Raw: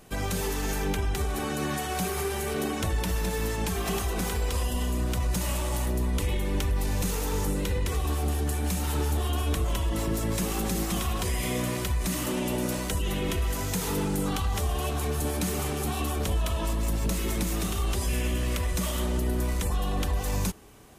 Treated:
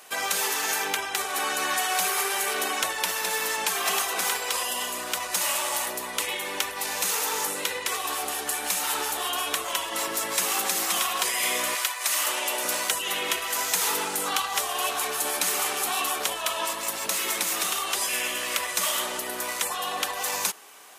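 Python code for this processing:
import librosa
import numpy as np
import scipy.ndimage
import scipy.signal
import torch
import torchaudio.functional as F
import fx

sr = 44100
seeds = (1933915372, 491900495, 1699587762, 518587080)

y = fx.highpass(x, sr, hz=fx.line((11.74, 790.0), (12.63, 330.0)), slope=12, at=(11.74, 12.63), fade=0.02)
y = scipy.signal.sosfilt(scipy.signal.butter(2, 860.0, 'highpass', fs=sr, output='sos'), y)
y = y * 10.0 ** (9.0 / 20.0)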